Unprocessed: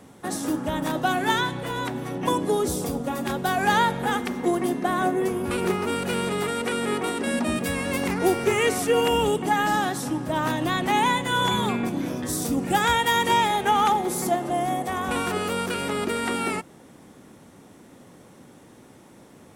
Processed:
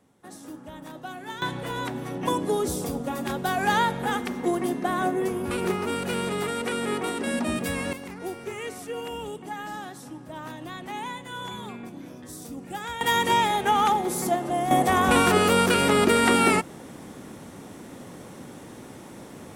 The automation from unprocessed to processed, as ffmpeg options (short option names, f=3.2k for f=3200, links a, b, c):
-af "asetnsamples=n=441:p=0,asendcmd='1.42 volume volume -2dB;7.93 volume volume -13dB;13.01 volume volume -1dB;14.71 volume volume 7dB',volume=-14.5dB"